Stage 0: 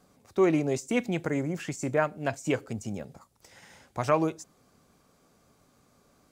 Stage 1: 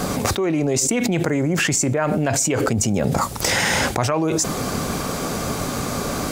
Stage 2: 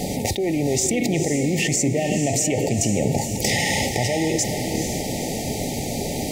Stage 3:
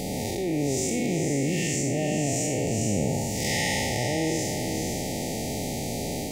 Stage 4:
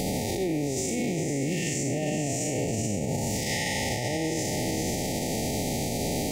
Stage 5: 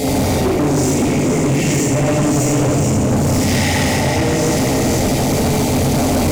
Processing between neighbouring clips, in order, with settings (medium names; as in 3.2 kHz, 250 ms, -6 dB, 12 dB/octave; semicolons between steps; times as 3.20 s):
level flattener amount 100%; trim -1 dB
FFT band-reject 900–1800 Hz; echo that smears into a reverb 471 ms, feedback 48%, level -7 dB; trim -2 dB
spectral blur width 187 ms; trim -2.5 dB
in parallel at 0 dB: level held to a coarse grid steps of 18 dB; on the sum: peak limiter -19.5 dBFS, peak gain reduction 9 dB
reverberation RT60 2.0 s, pre-delay 5 ms, DRR -9.5 dB; hard clipper -17.5 dBFS, distortion -9 dB; trim +5 dB